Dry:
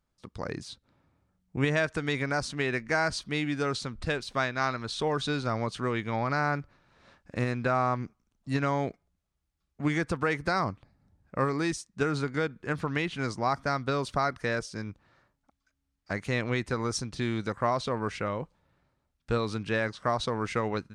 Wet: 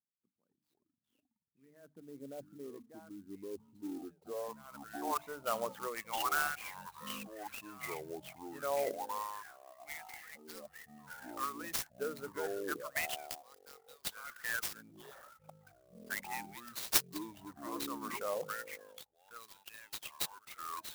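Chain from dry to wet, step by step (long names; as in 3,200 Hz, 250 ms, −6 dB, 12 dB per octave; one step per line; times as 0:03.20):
spectral envelope exaggerated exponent 2
low shelf with overshoot 230 Hz +7 dB, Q 1.5
mains-hum notches 50/100/150/200/250/300 Hz
reversed playback
downward compressor 5 to 1, threshold −44 dBFS, peak gain reduction 22.5 dB
reversed playback
auto-filter high-pass sine 0.31 Hz 550–4,700 Hz
delay with pitch and tempo change per echo 159 ms, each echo −6 semitones, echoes 3, each echo −6 dB
low-pass filter sweep 260 Hz → 5,700 Hz, 0:03.63–0:07.09
converter with an unsteady clock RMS 0.048 ms
level +7 dB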